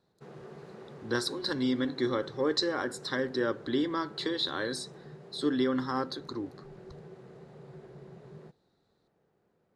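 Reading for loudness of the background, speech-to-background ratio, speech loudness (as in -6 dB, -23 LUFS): -49.5 LUFS, 18.0 dB, -31.5 LUFS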